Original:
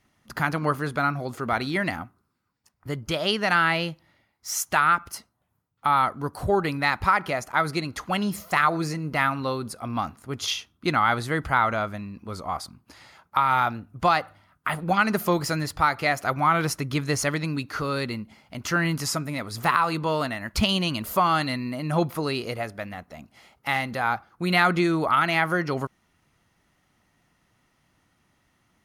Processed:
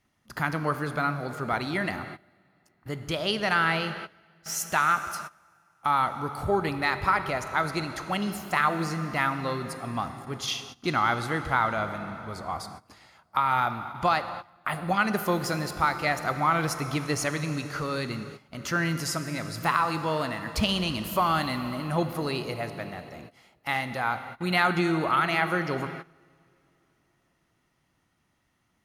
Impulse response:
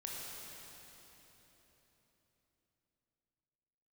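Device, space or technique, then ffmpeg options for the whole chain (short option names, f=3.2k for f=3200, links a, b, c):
keyed gated reverb: -filter_complex "[0:a]asplit=3[a][b][c];[1:a]atrim=start_sample=2205[d];[b][d]afir=irnorm=-1:irlink=0[e];[c]apad=whole_len=1272027[f];[e][f]sidechaingate=range=-19dB:threshold=-47dB:ratio=16:detection=peak,volume=-5dB[g];[a][g]amix=inputs=2:normalize=0,volume=-5.5dB"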